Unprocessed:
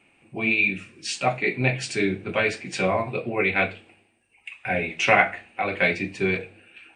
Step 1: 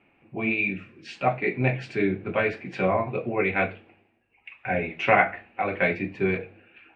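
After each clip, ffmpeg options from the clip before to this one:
-af "lowpass=2k"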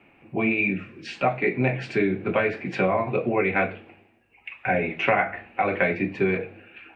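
-filter_complex "[0:a]acrossover=split=120|2500[a][b][c];[a]acompressor=threshold=-51dB:ratio=4[d];[b]acompressor=threshold=-26dB:ratio=4[e];[c]acompressor=threshold=-46dB:ratio=4[f];[d][e][f]amix=inputs=3:normalize=0,volume=6.5dB"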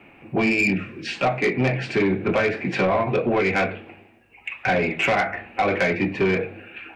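-filter_complex "[0:a]asplit=2[a][b];[b]alimiter=limit=-15.5dB:level=0:latency=1:release=460,volume=2dB[c];[a][c]amix=inputs=2:normalize=0,asoftclip=type=tanh:threshold=-14dB"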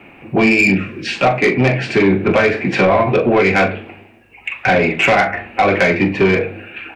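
-filter_complex "[0:a]asplit=2[a][b];[b]adelay=41,volume=-12dB[c];[a][c]amix=inputs=2:normalize=0,volume=7.5dB"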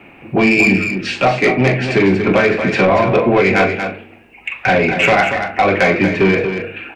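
-af "aecho=1:1:234:0.398"

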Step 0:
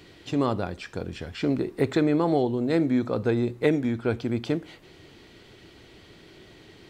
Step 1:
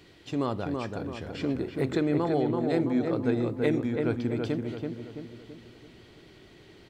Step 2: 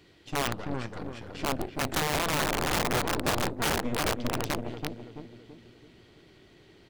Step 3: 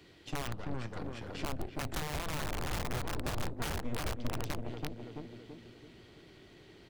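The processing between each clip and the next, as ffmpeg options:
-filter_complex "[0:a]asplit=2[a][b];[b]adelay=332,lowpass=f=1.9k:p=1,volume=-3.5dB,asplit=2[c][d];[d]adelay=332,lowpass=f=1.9k:p=1,volume=0.49,asplit=2[e][f];[f]adelay=332,lowpass=f=1.9k:p=1,volume=0.49,asplit=2[g][h];[h]adelay=332,lowpass=f=1.9k:p=1,volume=0.49,asplit=2[i][j];[j]adelay=332,lowpass=f=1.9k:p=1,volume=0.49,asplit=2[k][l];[l]adelay=332,lowpass=f=1.9k:p=1,volume=0.49[m];[a][c][e][g][i][k][m]amix=inputs=7:normalize=0,volume=-4.5dB"
-af "aeval=exprs='0.251*(cos(1*acos(clip(val(0)/0.251,-1,1)))-cos(1*PI/2))+0.0562*(cos(8*acos(clip(val(0)/0.251,-1,1)))-cos(8*PI/2))':c=same,aeval=exprs='(mod(6.31*val(0)+1,2)-1)/6.31':c=same,volume=-3.5dB"
-filter_complex "[0:a]acrossover=split=120[a][b];[b]acompressor=threshold=-39dB:ratio=3[c];[a][c]amix=inputs=2:normalize=0"

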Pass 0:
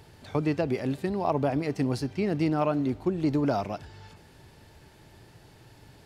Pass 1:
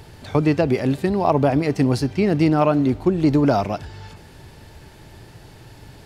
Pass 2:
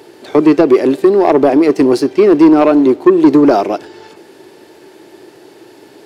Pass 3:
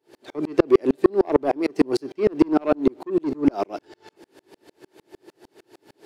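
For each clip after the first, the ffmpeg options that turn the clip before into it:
-af "lowshelf=f=60:g=6.5,volume=8.5dB"
-filter_complex "[0:a]asplit=2[a][b];[b]aeval=exprs='sgn(val(0))*max(abs(val(0))-0.02,0)':c=same,volume=-6dB[c];[a][c]amix=inputs=2:normalize=0,highpass=f=350:t=q:w=4,asoftclip=type=tanh:threshold=-4dB,volume=3dB"
-af "aeval=exprs='val(0)*pow(10,-39*if(lt(mod(-6.6*n/s,1),2*abs(-6.6)/1000),1-mod(-6.6*n/s,1)/(2*abs(-6.6)/1000),(mod(-6.6*n/s,1)-2*abs(-6.6)/1000)/(1-2*abs(-6.6)/1000))/20)':c=same,volume=-2.5dB"

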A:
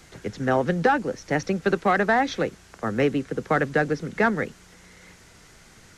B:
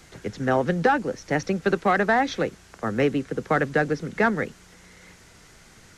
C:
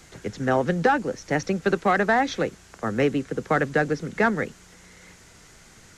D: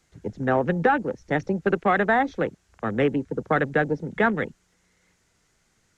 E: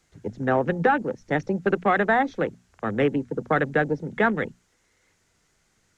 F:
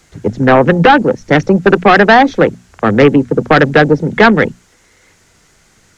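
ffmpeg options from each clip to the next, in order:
-af anull
-af "equalizer=f=7.1k:t=o:w=0.46:g=3.5"
-af "afwtdn=0.0224"
-af "bandreject=f=60:t=h:w=6,bandreject=f=120:t=h:w=6,bandreject=f=180:t=h:w=6,bandreject=f=240:t=h:w=6"
-af "aeval=exprs='0.398*sin(PI/2*2*val(0)/0.398)':c=same,volume=7dB"

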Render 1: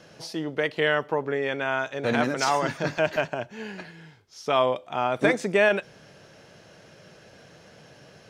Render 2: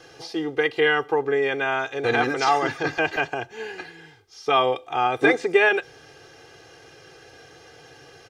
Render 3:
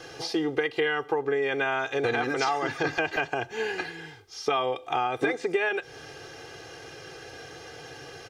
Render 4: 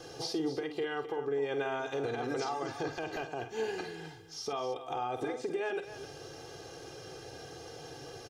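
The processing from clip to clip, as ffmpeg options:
-filter_complex "[0:a]acrossover=split=5000[a][b];[b]acompressor=threshold=-55dB:ratio=4:attack=1:release=60[c];[a][c]amix=inputs=2:normalize=0,lowshelf=f=220:g=-3.5,aecho=1:1:2.5:0.9,volume=1.5dB"
-af "acompressor=threshold=-28dB:ratio=6,volume=4.5dB"
-af "equalizer=f=2k:w=0.97:g=-10,alimiter=level_in=0.5dB:limit=-24dB:level=0:latency=1:release=209,volume=-0.5dB,aecho=1:1:49.56|259.5:0.316|0.251,volume=-1.5dB"

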